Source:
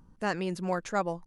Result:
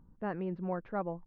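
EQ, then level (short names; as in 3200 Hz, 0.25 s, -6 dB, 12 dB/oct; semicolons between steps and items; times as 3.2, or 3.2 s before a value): air absorption 290 m; tape spacing loss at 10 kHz 43 dB; -2.0 dB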